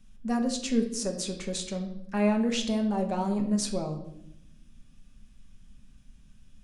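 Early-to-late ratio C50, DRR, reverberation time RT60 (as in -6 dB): 9.0 dB, 3.0 dB, 0.75 s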